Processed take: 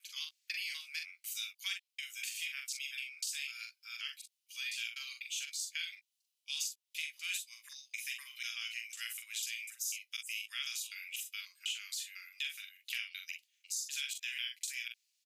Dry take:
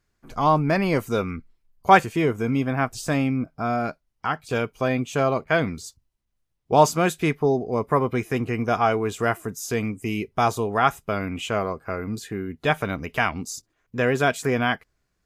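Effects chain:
slices reordered back to front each 248 ms, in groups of 2
Butterworth high-pass 2,600 Hz 36 dB per octave
downward compressor 5 to 1, threshold −40 dBFS, peak gain reduction 13.5 dB
on a send: ambience of single reflections 43 ms −5 dB, 60 ms −16.5 dB
on the sum: level +3 dB

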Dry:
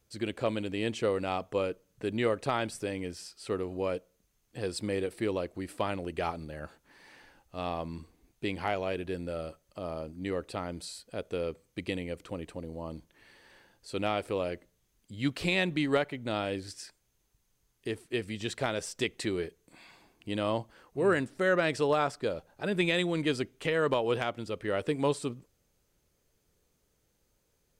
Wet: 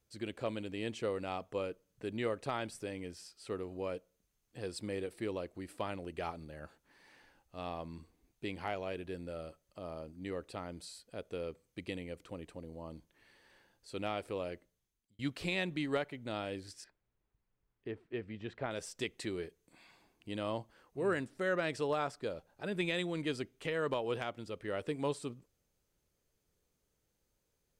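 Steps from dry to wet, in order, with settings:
0:14.54–0:15.19: fade out
0:16.84–0:18.71: low-pass filter 2,000 Hz 12 dB per octave
level −7 dB

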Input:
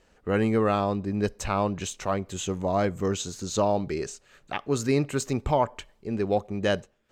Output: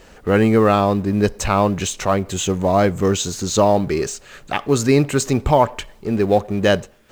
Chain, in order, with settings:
mu-law and A-law mismatch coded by mu
level +8.5 dB

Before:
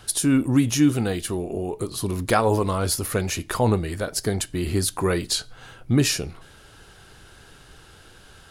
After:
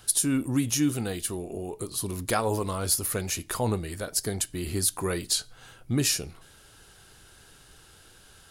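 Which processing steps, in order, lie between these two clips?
high-shelf EQ 5,400 Hz +10.5 dB
level −7 dB

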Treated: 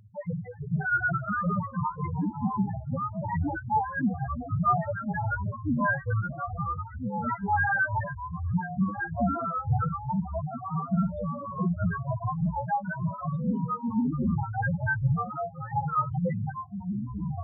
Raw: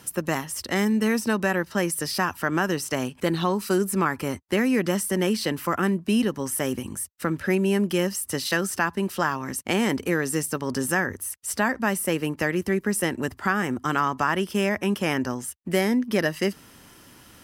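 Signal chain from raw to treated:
frequency axis turned over on the octave scale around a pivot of 560 Hz
spectral peaks only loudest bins 1
delay with pitch and tempo change per echo 270 ms, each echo −3 semitones, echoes 3, each echo −6 dB
level +5 dB

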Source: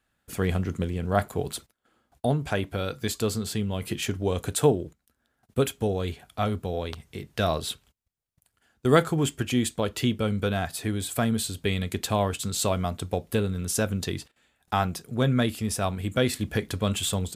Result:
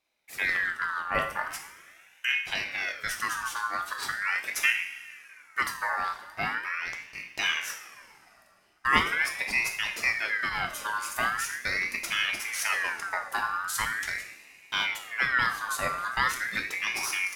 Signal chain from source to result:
coupled-rooms reverb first 0.57 s, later 2.6 s, from −15 dB, DRR 2.5 dB
ring modulator whose carrier an LFO sweeps 1,800 Hz, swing 30%, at 0.41 Hz
level −2.5 dB

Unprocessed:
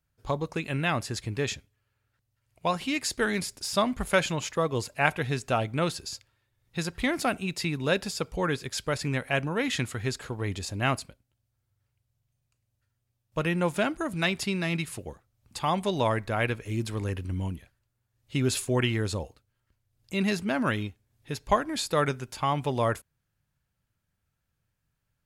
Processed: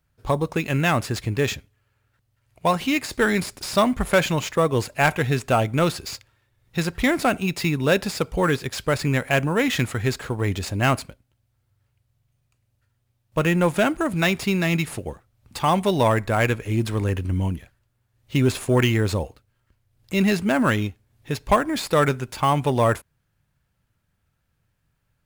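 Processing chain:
de-essing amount 65%
in parallel at −6 dB: sample-rate reduction 9,200 Hz, jitter 0%
on the sum: soft clipping −12.5 dBFS, distortion −20 dB
level +4.5 dB

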